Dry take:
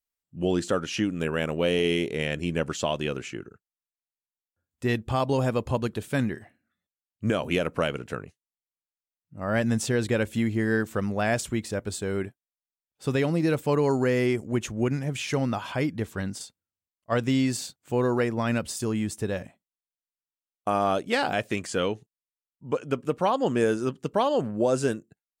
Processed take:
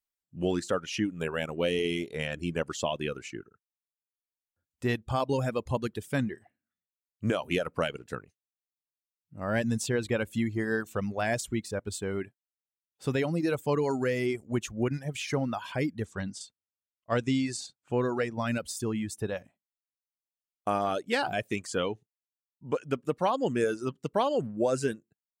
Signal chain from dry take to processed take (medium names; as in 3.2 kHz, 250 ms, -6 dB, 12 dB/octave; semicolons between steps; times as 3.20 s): reverb removal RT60 1 s; 16.05–18.34 s: low-pass 9.3 kHz 24 dB/octave; trim -2.5 dB